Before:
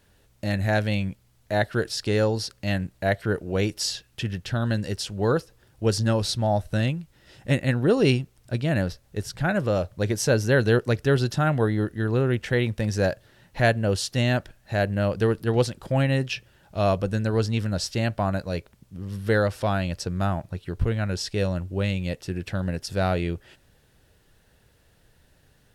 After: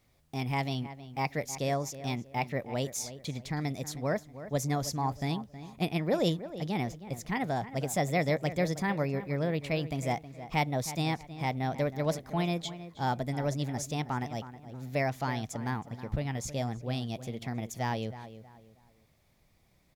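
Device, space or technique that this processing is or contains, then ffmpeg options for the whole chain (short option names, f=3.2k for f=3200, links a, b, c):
nightcore: -filter_complex "[0:a]asplit=2[a][b];[b]adelay=410,lowpass=f=1.8k:p=1,volume=-13dB,asplit=2[c][d];[d]adelay=410,lowpass=f=1.8k:p=1,volume=0.33,asplit=2[e][f];[f]adelay=410,lowpass=f=1.8k:p=1,volume=0.33[g];[a][c][e][g]amix=inputs=4:normalize=0,asetrate=56889,aresample=44100,volume=-8dB"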